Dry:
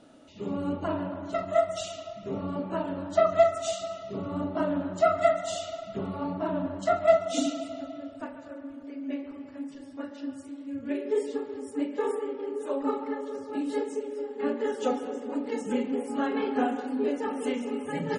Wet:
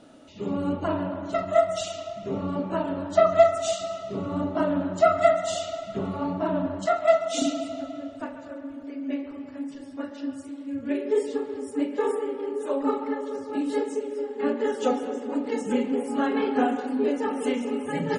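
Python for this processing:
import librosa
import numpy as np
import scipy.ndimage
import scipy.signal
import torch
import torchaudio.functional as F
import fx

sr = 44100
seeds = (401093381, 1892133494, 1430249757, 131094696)

y = fx.highpass(x, sr, hz=590.0, slope=6, at=(6.86, 7.42))
y = fx.rev_freeverb(y, sr, rt60_s=2.7, hf_ratio=0.9, predelay_ms=25, drr_db=19.0)
y = F.gain(torch.from_numpy(y), 3.5).numpy()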